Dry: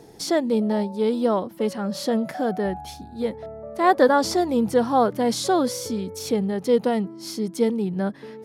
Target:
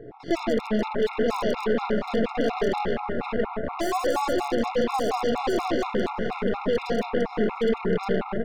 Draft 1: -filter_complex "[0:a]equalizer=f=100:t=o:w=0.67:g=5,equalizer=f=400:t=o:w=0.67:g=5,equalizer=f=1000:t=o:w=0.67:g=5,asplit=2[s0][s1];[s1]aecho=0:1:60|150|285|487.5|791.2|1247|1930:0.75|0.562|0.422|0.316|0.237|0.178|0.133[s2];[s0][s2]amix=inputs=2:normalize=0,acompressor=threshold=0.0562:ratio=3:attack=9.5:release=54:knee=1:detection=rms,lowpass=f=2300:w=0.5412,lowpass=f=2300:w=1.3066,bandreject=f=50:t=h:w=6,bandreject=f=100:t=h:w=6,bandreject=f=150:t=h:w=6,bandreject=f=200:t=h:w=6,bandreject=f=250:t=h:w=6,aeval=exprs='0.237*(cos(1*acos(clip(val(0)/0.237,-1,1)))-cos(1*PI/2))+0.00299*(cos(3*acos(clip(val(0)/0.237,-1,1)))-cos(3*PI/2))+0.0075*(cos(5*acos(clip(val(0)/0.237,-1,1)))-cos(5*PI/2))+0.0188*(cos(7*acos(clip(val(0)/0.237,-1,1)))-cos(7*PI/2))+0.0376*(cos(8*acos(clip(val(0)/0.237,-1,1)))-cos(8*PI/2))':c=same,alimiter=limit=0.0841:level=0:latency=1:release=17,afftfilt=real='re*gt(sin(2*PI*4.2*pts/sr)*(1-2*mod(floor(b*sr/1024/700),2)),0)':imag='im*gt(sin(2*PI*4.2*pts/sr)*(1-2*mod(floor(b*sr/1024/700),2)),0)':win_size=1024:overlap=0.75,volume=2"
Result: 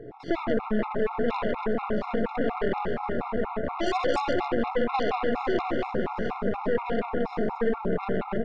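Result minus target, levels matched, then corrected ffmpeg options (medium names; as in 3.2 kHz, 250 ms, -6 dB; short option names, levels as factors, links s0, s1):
compression: peak gain reduction +4.5 dB
-filter_complex "[0:a]equalizer=f=100:t=o:w=0.67:g=5,equalizer=f=400:t=o:w=0.67:g=5,equalizer=f=1000:t=o:w=0.67:g=5,asplit=2[s0][s1];[s1]aecho=0:1:60|150|285|487.5|791.2|1247|1930:0.75|0.562|0.422|0.316|0.237|0.178|0.133[s2];[s0][s2]amix=inputs=2:normalize=0,acompressor=threshold=0.126:ratio=3:attack=9.5:release=54:knee=1:detection=rms,lowpass=f=2300:w=0.5412,lowpass=f=2300:w=1.3066,bandreject=f=50:t=h:w=6,bandreject=f=100:t=h:w=6,bandreject=f=150:t=h:w=6,bandreject=f=200:t=h:w=6,bandreject=f=250:t=h:w=6,aeval=exprs='0.237*(cos(1*acos(clip(val(0)/0.237,-1,1)))-cos(1*PI/2))+0.00299*(cos(3*acos(clip(val(0)/0.237,-1,1)))-cos(3*PI/2))+0.0075*(cos(5*acos(clip(val(0)/0.237,-1,1)))-cos(5*PI/2))+0.0188*(cos(7*acos(clip(val(0)/0.237,-1,1)))-cos(7*PI/2))+0.0376*(cos(8*acos(clip(val(0)/0.237,-1,1)))-cos(8*PI/2))':c=same,alimiter=limit=0.0841:level=0:latency=1:release=17,afftfilt=real='re*gt(sin(2*PI*4.2*pts/sr)*(1-2*mod(floor(b*sr/1024/700),2)),0)':imag='im*gt(sin(2*PI*4.2*pts/sr)*(1-2*mod(floor(b*sr/1024/700),2)),0)':win_size=1024:overlap=0.75,volume=2"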